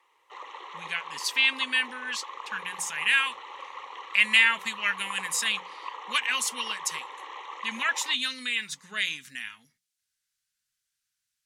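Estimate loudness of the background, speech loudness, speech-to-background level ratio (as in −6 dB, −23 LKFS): −40.5 LKFS, −26.5 LKFS, 14.0 dB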